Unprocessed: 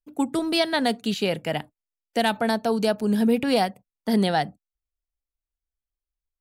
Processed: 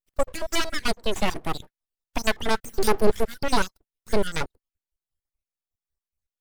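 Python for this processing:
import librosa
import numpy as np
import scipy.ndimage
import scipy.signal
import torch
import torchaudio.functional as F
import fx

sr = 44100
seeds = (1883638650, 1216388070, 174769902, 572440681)

y = fx.spec_dropout(x, sr, seeds[0], share_pct=60)
y = fx.bass_treble(y, sr, bass_db=11, treble_db=10, at=(2.64, 3.1))
y = np.abs(y)
y = y * 10.0 ** (4.0 / 20.0)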